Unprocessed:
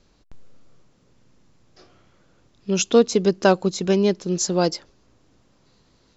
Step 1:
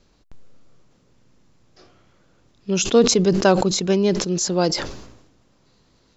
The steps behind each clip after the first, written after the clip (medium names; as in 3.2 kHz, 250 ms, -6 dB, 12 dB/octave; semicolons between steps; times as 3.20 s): decay stretcher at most 60 dB/s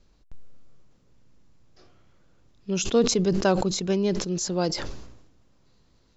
bass shelf 84 Hz +9.5 dB; trim -6.5 dB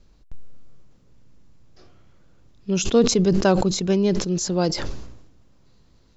bass shelf 260 Hz +4 dB; trim +2.5 dB